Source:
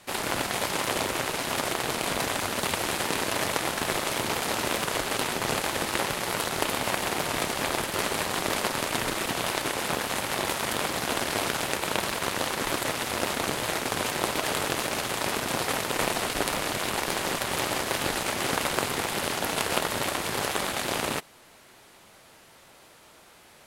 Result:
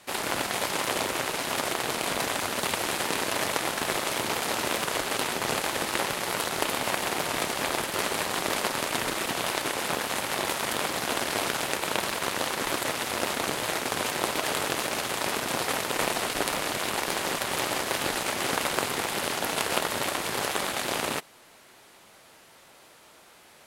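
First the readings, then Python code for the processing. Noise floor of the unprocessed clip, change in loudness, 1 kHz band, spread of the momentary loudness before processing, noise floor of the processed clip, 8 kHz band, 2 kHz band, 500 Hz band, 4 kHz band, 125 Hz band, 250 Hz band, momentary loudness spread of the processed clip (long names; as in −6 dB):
−54 dBFS, 0.0 dB, 0.0 dB, 1 LU, −54 dBFS, 0.0 dB, 0.0 dB, −0.5 dB, 0.0 dB, −3.5 dB, −1.5 dB, 1 LU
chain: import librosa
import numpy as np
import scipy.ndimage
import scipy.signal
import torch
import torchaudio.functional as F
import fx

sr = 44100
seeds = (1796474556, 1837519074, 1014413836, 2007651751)

y = fx.low_shelf(x, sr, hz=140.0, db=-7.0)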